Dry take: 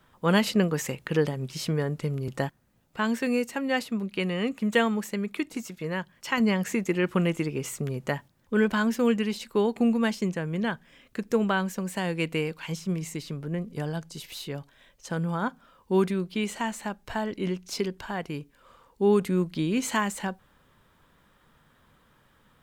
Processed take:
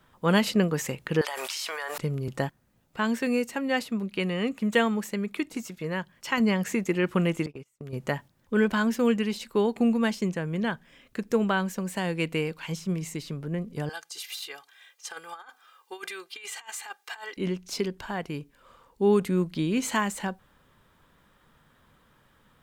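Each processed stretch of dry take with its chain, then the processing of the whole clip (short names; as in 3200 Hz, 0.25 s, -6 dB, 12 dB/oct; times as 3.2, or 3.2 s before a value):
1.21–1.98 HPF 800 Hz 24 dB/oct + fast leveller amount 100%
7.46–7.93 gate -32 dBFS, range -36 dB + compressor 10:1, threshold -36 dBFS
13.89–17.37 HPF 1100 Hz + negative-ratio compressor -40 dBFS, ratio -0.5 + comb 2.5 ms, depth 77%
whole clip: dry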